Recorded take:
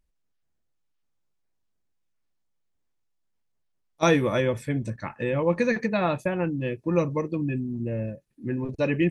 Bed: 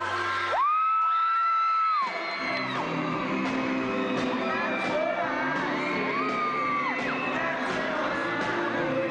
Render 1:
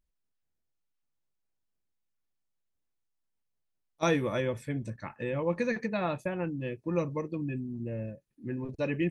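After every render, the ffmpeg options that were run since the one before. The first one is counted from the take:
ffmpeg -i in.wav -af "volume=-6.5dB" out.wav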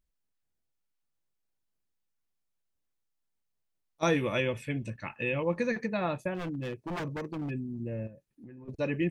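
ffmpeg -i in.wav -filter_complex "[0:a]asettb=1/sr,asplit=3[link_01][link_02][link_03];[link_01]atrim=end=4.164[link_04];[link_02]atrim=start=4.16:end=5.44,asetpts=PTS-STARTPTS,afade=type=in:duration=0.004:curve=qsin,afade=type=out:start_time=1.276:duration=0.004:curve=qsin,equalizer=frequency=2700:width_type=o:width=0.47:gain=14.5[link_05];[link_03]atrim=start=5.436[link_06];[link_04][link_05]acrossfade=duration=0.004:curve1=hsin:curve2=qsin[link_07];[link_07][link_06]acrossfade=duration=0.004:curve1=qsin:curve2=hsin,asplit=3[link_08][link_09][link_10];[link_08]afade=type=out:start_time=6.34:duration=0.02[link_11];[link_09]aeval=exprs='0.0335*(abs(mod(val(0)/0.0335+3,4)-2)-1)':channel_layout=same,afade=type=in:start_time=6.34:duration=0.02,afade=type=out:start_time=7.49:duration=0.02[link_12];[link_10]afade=type=in:start_time=7.49:duration=0.02[link_13];[link_11][link_12][link_13]amix=inputs=3:normalize=0,asettb=1/sr,asplit=3[link_14][link_15][link_16];[link_14]atrim=end=8.074[link_17];[link_15]atrim=start=8.07:end=8.68,asetpts=PTS-STARTPTS,afade=type=in:duration=0.004:curve=qsin,afade=type=out:start_time=0.606:duration=0.004:curve=qsin,acompressor=threshold=-44dB:ratio=16:attack=3.2:release=140:knee=1:detection=peak[link_18];[link_16]atrim=start=8.676[link_19];[link_17][link_18]acrossfade=duration=0.004:curve1=hsin:curve2=qsin[link_20];[link_20][link_19]acrossfade=duration=0.004:curve1=qsin:curve2=hsin" out.wav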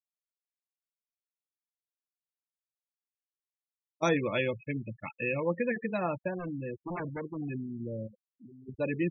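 ffmpeg -i in.wav -af "afftfilt=real='re*gte(hypot(re,im),0.0251)':imag='im*gte(hypot(re,im),0.0251)':win_size=1024:overlap=0.75,lowshelf=frequency=80:gain=-9" out.wav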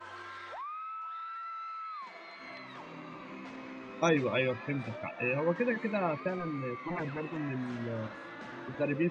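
ffmpeg -i in.wav -i bed.wav -filter_complex "[1:a]volume=-17dB[link_01];[0:a][link_01]amix=inputs=2:normalize=0" out.wav

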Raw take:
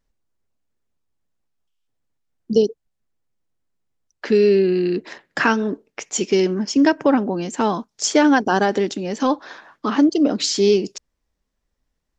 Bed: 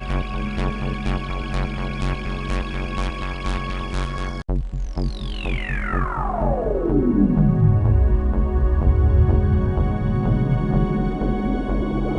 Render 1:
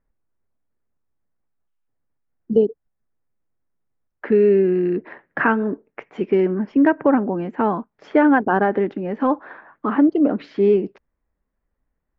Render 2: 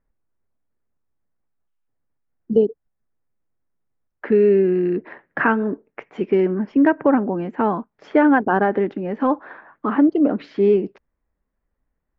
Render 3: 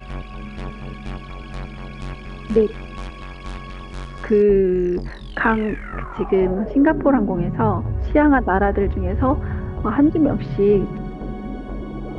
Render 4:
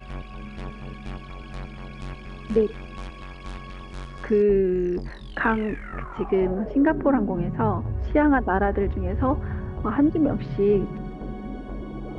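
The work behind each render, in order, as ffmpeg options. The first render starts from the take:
ffmpeg -i in.wav -af "lowpass=frequency=2000:width=0.5412,lowpass=frequency=2000:width=1.3066" out.wav
ffmpeg -i in.wav -af anull out.wav
ffmpeg -i in.wav -i bed.wav -filter_complex "[1:a]volume=-7.5dB[link_01];[0:a][link_01]amix=inputs=2:normalize=0" out.wav
ffmpeg -i in.wav -af "volume=-4.5dB" out.wav

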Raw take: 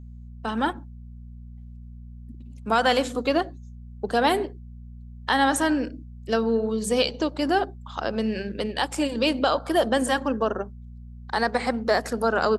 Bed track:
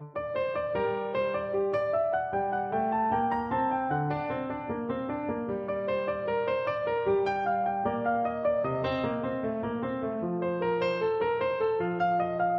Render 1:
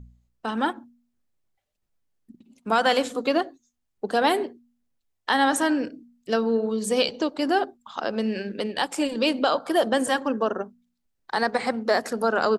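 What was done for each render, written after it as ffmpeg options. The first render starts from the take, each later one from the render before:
ffmpeg -i in.wav -af "bandreject=frequency=60:width_type=h:width=4,bandreject=frequency=120:width_type=h:width=4,bandreject=frequency=180:width_type=h:width=4,bandreject=frequency=240:width_type=h:width=4" out.wav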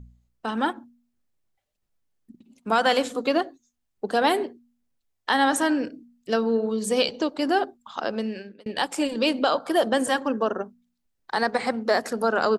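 ffmpeg -i in.wav -filter_complex "[0:a]asplit=2[link_01][link_02];[link_01]atrim=end=8.66,asetpts=PTS-STARTPTS,afade=type=out:start_time=8.08:duration=0.58[link_03];[link_02]atrim=start=8.66,asetpts=PTS-STARTPTS,afade=type=in:duration=0.004:curve=hsin[link_04];[link_03][link_04]concat=n=2:v=0:a=1" out.wav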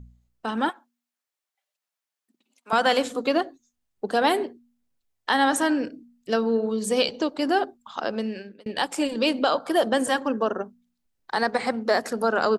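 ffmpeg -i in.wav -filter_complex "[0:a]asettb=1/sr,asplit=3[link_01][link_02][link_03];[link_01]atrim=end=0.694[link_04];[link_02]atrim=start=0.69:end=2.73,asetpts=PTS-STARTPTS,afade=type=in:duration=0.004:curve=qsin,afade=type=out:start_time=2.036:duration=0.004:curve=qsin,highpass=830[link_05];[link_03]atrim=start=2.726[link_06];[link_04][link_05]acrossfade=duration=0.004:curve1=hsin:curve2=qsin[link_07];[link_07][link_06]acrossfade=duration=0.004:curve1=qsin:curve2=hsin" out.wav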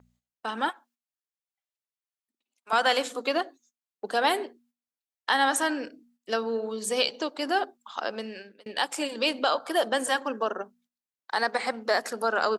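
ffmpeg -i in.wav -af "agate=range=-12dB:threshold=-56dB:ratio=16:detection=peak,highpass=frequency=700:poles=1" out.wav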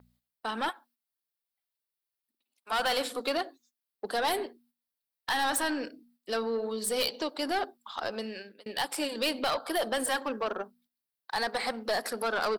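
ffmpeg -i in.wav -af "aeval=exprs='(tanh(15.8*val(0)+0.1)-tanh(0.1))/15.8':channel_layout=same,aexciter=amount=1.1:drive=5.2:freq=3700" out.wav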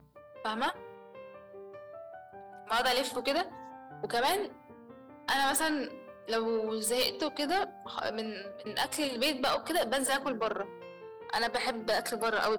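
ffmpeg -i in.wav -i bed.wav -filter_complex "[1:a]volume=-19.5dB[link_01];[0:a][link_01]amix=inputs=2:normalize=0" out.wav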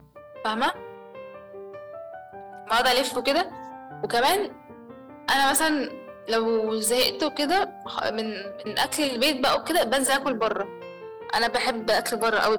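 ffmpeg -i in.wav -af "volume=7.5dB" out.wav

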